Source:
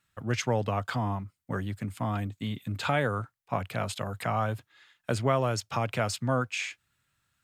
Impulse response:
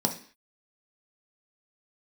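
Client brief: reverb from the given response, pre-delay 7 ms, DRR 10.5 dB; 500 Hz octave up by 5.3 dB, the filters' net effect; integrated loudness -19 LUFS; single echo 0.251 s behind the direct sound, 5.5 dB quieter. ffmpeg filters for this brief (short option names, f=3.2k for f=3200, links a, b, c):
-filter_complex "[0:a]equalizer=f=500:t=o:g=6.5,aecho=1:1:251:0.531,asplit=2[a][b];[1:a]atrim=start_sample=2205,adelay=7[c];[b][c]afir=irnorm=-1:irlink=0,volume=-19dB[d];[a][d]amix=inputs=2:normalize=0,volume=8dB"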